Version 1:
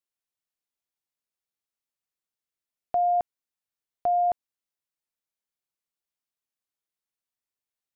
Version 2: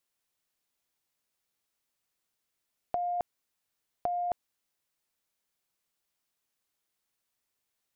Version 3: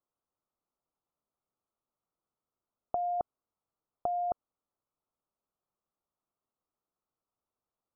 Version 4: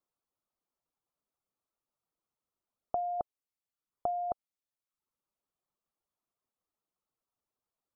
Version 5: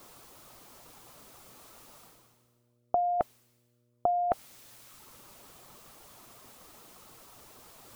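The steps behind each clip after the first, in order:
compressor with a negative ratio -28 dBFS, ratio -0.5
elliptic low-pass 1.3 kHz
reverb removal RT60 0.77 s
reverse; upward compressor, threshold -33 dBFS; reverse; mains buzz 120 Hz, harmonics 5, -77 dBFS -5 dB/octave; trim +5.5 dB

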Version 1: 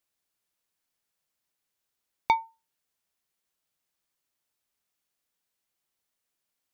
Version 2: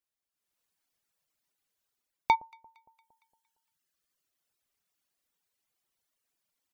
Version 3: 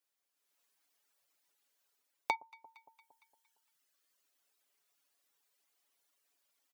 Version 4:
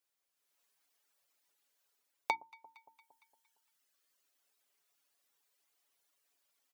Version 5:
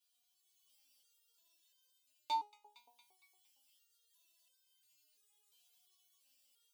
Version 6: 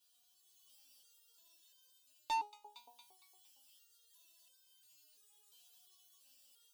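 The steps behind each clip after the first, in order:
echo whose repeats swap between lows and highs 115 ms, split 980 Hz, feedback 63%, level -13 dB; level rider gain up to 11.5 dB; reverb removal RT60 1.6 s; trim -8.5 dB
high-pass 320 Hz; comb 7.1 ms; compression 2:1, threshold -41 dBFS, peak gain reduction 12 dB; trim +2.5 dB
hum notches 60/120/180/240/300/360 Hz
resonant high shelf 2.5 kHz +6.5 dB, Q 3; peak limiter -20 dBFS, peak gain reduction 9.5 dB; resonator arpeggio 2.9 Hz 240–520 Hz; trim +12.5 dB
peaking EQ 2.2 kHz -12 dB 0.21 oct; saturation -39 dBFS, distortion -10 dB; trim +7 dB

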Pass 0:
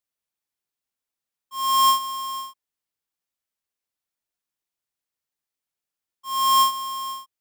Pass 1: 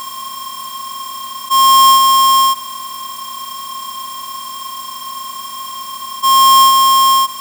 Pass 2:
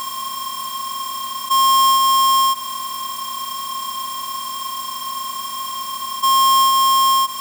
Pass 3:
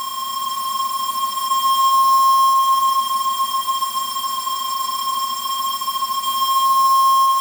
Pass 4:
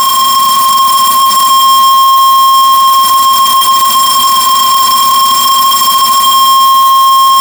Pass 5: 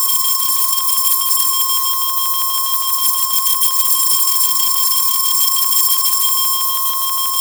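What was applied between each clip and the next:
spectral levelling over time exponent 0.2; trim +8.5 dB
compression 2.5:1, threshold -17 dBFS, peak gain reduction 6.5 dB
spectral levelling over time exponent 0.4; multi-head delay 142 ms, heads all three, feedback 67%, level -9 dB; trim -6.5 dB
waveshaping leveller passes 5; trim +4.5 dB
LFO notch square 6.2 Hz 610–2900 Hz; pre-emphasis filter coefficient 0.97; trim -2.5 dB

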